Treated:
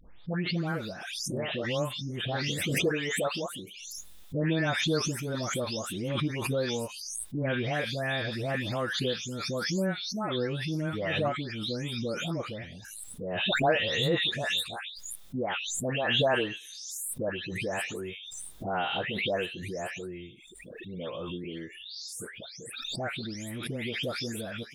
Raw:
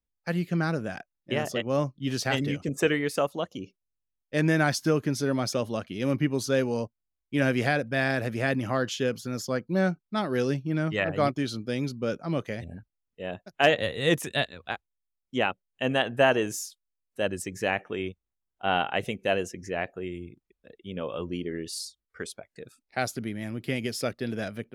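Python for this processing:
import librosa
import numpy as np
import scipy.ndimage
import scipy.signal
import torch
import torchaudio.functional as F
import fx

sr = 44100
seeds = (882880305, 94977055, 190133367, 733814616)

y = fx.spec_delay(x, sr, highs='late', ms=393)
y = fx.peak_eq(y, sr, hz=3600.0, db=11.0, octaves=0.24)
y = fx.pre_swell(y, sr, db_per_s=30.0)
y = y * librosa.db_to_amplitude(-4.0)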